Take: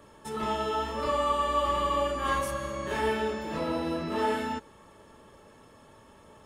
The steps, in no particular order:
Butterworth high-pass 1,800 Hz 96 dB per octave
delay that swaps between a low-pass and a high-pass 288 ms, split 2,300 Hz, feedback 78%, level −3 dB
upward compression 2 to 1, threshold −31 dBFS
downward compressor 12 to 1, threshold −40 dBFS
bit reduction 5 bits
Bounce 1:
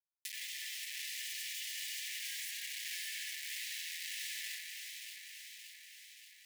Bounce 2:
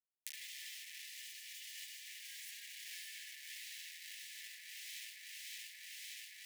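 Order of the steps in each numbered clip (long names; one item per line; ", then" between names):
upward compression, then bit reduction, then Butterworth high-pass, then downward compressor, then delay that swaps between a low-pass and a high-pass
bit reduction, then upward compression, then delay that swaps between a low-pass and a high-pass, then downward compressor, then Butterworth high-pass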